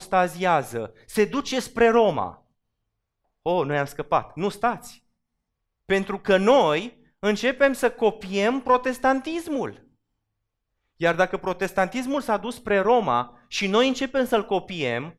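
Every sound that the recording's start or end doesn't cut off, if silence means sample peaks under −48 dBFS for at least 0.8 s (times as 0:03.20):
0:03.46–0:04.97
0:05.89–0:09.84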